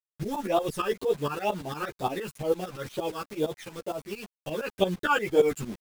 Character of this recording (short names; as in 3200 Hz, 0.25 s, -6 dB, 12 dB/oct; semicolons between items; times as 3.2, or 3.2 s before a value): phasing stages 12, 2.1 Hz, lowest notch 620–2000 Hz; a quantiser's noise floor 8-bit, dither none; tremolo saw up 8.7 Hz, depth 90%; a shimmering, thickened sound